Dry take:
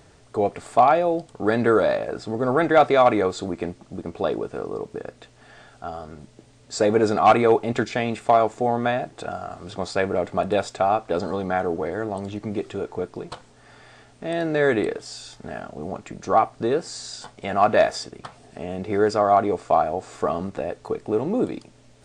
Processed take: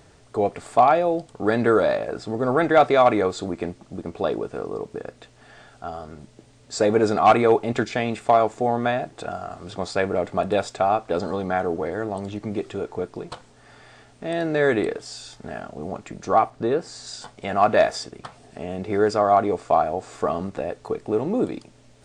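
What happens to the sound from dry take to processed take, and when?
0:16.50–0:17.07: high-shelf EQ 3,800 Hz −7 dB

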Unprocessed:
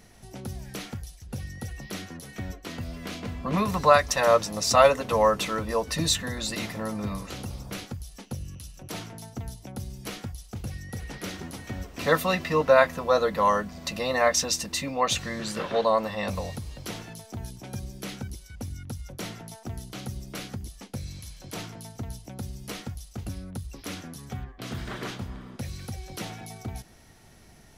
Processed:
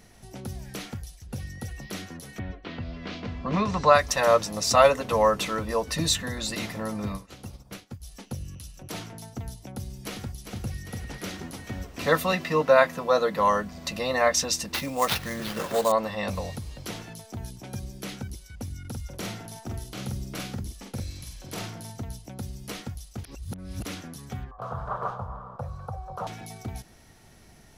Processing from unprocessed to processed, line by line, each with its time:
0:02.38–0:03.94: low-pass filter 3,300 Hz → 7,700 Hz 24 dB per octave
0:07.12–0:08.03: expander for the loud parts 2.5 to 1, over −43 dBFS
0:09.66–0:10.41: delay throw 400 ms, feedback 60%, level −7 dB
0:12.32–0:13.39: high-pass filter 110 Hz 24 dB per octave
0:14.74–0:15.92: sample-rate reduction 8,000 Hz, jitter 20%
0:18.80–0:22.03: double-tracking delay 46 ms −3 dB
0:23.24–0:23.85: reverse
0:24.51–0:26.27: drawn EQ curve 150 Hz 0 dB, 310 Hz −19 dB, 490 Hz +6 dB, 1,200 Hz +13 dB, 2,000 Hz −19 dB

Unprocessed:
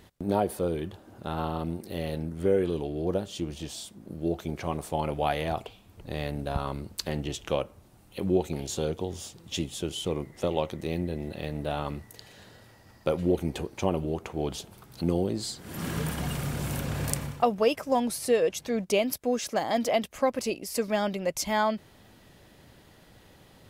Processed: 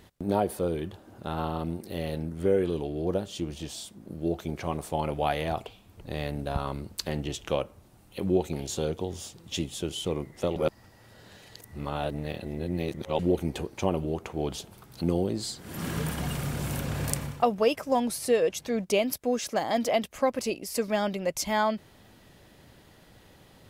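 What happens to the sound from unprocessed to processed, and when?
0:10.56–0:13.19: reverse

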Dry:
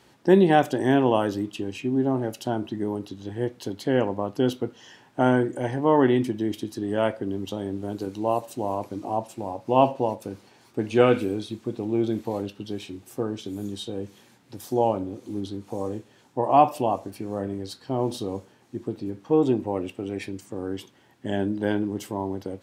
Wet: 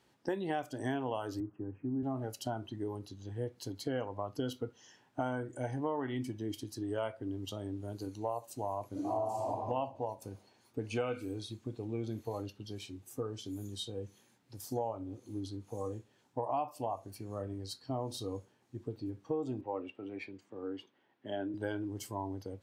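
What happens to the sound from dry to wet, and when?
0:01.40–0:02.03: elliptic band-pass filter 100–1,500 Hz
0:08.91–0:09.50: thrown reverb, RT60 1.6 s, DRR −7.5 dB
0:19.61–0:21.54: three-way crossover with the lows and the highs turned down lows −15 dB, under 200 Hz, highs −19 dB, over 4,100 Hz
whole clip: noise reduction from a noise print of the clip's start 9 dB; dynamic equaliser 210 Hz, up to −6 dB, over −40 dBFS, Q 1.9; downward compressor 6 to 1, threshold −28 dBFS; level −4 dB

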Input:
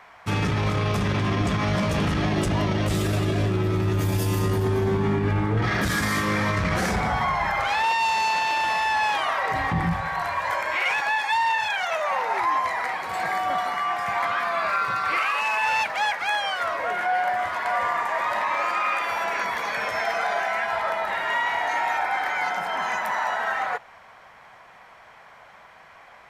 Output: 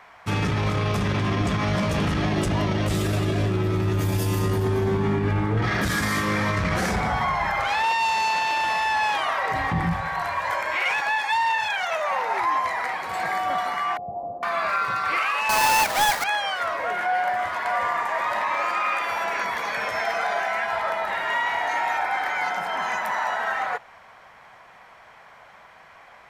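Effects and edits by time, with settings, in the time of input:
0:13.97–0:14.43: Chebyshev low-pass filter 720 Hz, order 5
0:15.49–0:16.24: each half-wave held at its own peak

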